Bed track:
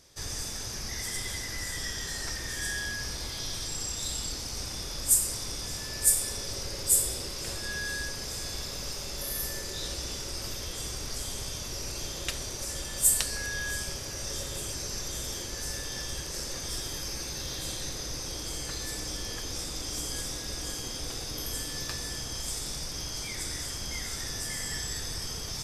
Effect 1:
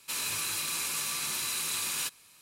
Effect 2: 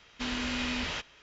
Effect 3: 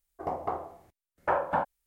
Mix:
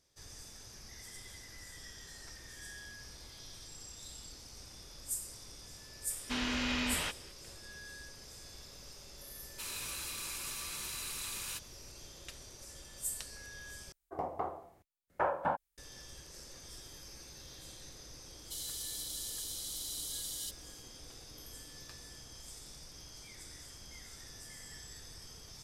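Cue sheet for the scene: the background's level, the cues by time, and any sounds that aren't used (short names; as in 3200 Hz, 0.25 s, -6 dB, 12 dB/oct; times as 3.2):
bed track -15.5 dB
6.1 add 2 -1.5 dB
9.5 add 1 -9 dB
13.92 replace with 3 -5 dB
18.42 add 1 -8 dB + brick-wall FIR high-pass 2900 Hz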